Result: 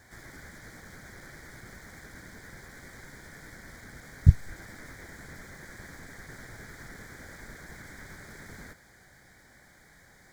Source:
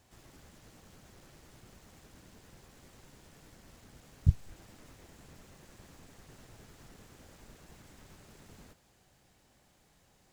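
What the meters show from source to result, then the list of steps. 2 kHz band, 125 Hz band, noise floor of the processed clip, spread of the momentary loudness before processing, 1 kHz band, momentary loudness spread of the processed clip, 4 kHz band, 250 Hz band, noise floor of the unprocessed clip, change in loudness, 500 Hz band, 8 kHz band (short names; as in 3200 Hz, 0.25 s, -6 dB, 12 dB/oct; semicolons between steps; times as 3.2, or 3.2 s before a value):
+17.0 dB, +7.5 dB, -58 dBFS, 7 LU, +9.0 dB, 8 LU, +6.0 dB, +7.5 dB, -67 dBFS, -3.0 dB, +7.5 dB, +7.5 dB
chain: Butterworth band-stop 2700 Hz, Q 2.2; band shelf 2000 Hz +11.5 dB 1.1 oct; gain +7.5 dB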